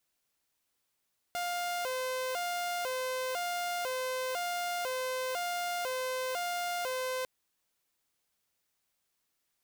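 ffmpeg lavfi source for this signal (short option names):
-f lavfi -i "aevalsrc='0.0335*(2*mod((609*t+95/1*(0.5-abs(mod(1*t,1)-0.5))),1)-1)':d=5.9:s=44100"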